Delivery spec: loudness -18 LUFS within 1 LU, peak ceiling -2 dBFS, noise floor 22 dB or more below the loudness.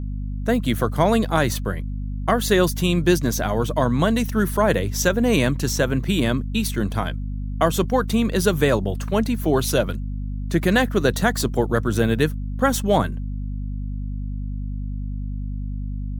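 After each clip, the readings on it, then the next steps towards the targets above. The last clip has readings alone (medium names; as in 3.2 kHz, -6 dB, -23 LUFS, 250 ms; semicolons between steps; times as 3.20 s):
hum 50 Hz; highest harmonic 250 Hz; hum level -25 dBFS; loudness -22.0 LUFS; peak level -2.5 dBFS; loudness target -18.0 LUFS
-> hum notches 50/100/150/200/250 Hz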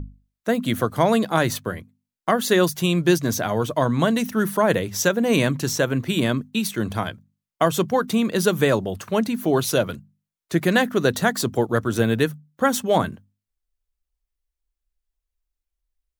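hum not found; loudness -22.0 LUFS; peak level -3.0 dBFS; loudness target -18.0 LUFS
-> trim +4 dB; peak limiter -2 dBFS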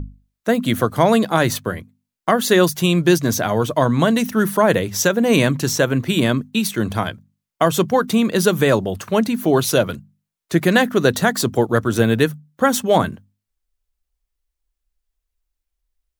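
loudness -18.0 LUFS; peak level -2.0 dBFS; noise floor -82 dBFS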